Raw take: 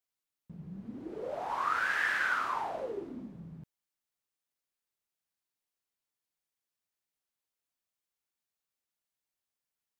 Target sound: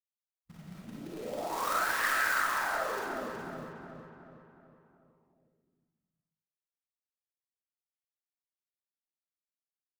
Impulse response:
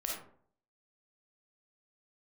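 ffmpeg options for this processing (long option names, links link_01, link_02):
-filter_complex "[0:a]afwtdn=0.00501,acrusher=bits=2:mode=log:mix=0:aa=0.000001,asplit=2[link_01][link_02];[link_02]adelay=367,lowpass=frequency=3200:poles=1,volume=-4dB,asplit=2[link_03][link_04];[link_04]adelay=367,lowpass=frequency=3200:poles=1,volume=0.51,asplit=2[link_05][link_06];[link_06]adelay=367,lowpass=frequency=3200:poles=1,volume=0.51,asplit=2[link_07][link_08];[link_08]adelay=367,lowpass=frequency=3200:poles=1,volume=0.51,asplit=2[link_09][link_10];[link_10]adelay=367,lowpass=frequency=3200:poles=1,volume=0.51,asplit=2[link_11][link_12];[link_12]adelay=367,lowpass=frequency=3200:poles=1,volume=0.51,asplit=2[link_13][link_14];[link_14]adelay=367,lowpass=frequency=3200:poles=1,volume=0.51[link_15];[link_01][link_03][link_05][link_07][link_09][link_11][link_13][link_15]amix=inputs=8:normalize=0[link_16];[1:a]atrim=start_sample=2205[link_17];[link_16][link_17]afir=irnorm=-1:irlink=0,adynamicequalizer=threshold=0.00794:dfrequency=3300:dqfactor=0.7:tfrequency=3300:tqfactor=0.7:attack=5:release=100:ratio=0.375:range=2.5:mode=boostabove:tftype=highshelf,volume=-3dB"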